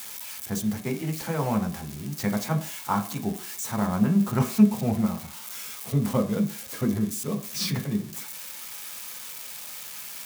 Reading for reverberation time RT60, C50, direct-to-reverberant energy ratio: 0.50 s, 12.0 dB, 3.5 dB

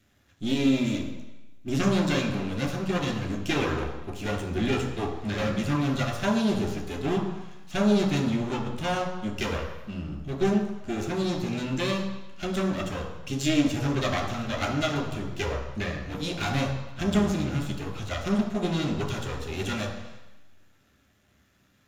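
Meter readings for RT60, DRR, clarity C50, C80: 1.0 s, −0.5 dB, 6.5 dB, 8.5 dB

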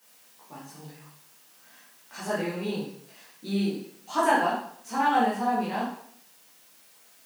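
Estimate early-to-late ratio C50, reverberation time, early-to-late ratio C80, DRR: 2.5 dB, 0.65 s, 6.5 dB, −9.5 dB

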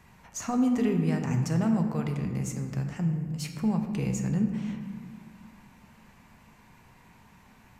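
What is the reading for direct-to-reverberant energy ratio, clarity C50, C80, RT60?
4.0 dB, 6.5 dB, 8.0 dB, 1.8 s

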